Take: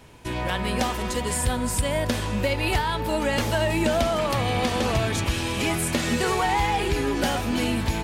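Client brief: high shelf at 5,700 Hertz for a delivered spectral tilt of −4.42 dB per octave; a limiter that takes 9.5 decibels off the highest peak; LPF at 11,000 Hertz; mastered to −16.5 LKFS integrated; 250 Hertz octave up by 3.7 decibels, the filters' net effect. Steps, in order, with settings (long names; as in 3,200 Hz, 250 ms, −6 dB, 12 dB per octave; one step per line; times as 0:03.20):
low-pass filter 11,000 Hz
parametric band 250 Hz +4.5 dB
high-shelf EQ 5,700 Hz +4 dB
level +11 dB
brickwall limiter −8 dBFS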